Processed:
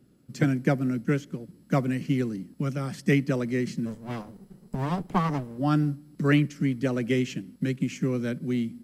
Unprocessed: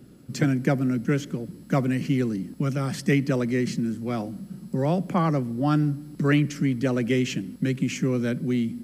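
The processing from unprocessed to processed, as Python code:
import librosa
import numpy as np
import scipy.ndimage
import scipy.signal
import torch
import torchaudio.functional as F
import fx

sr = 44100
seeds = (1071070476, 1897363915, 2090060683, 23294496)

y = fx.lower_of_two(x, sr, delay_ms=1.0, at=(3.85, 5.57), fade=0.02)
y = fx.upward_expand(y, sr, threshold_db=-39.0, expansion=1.5)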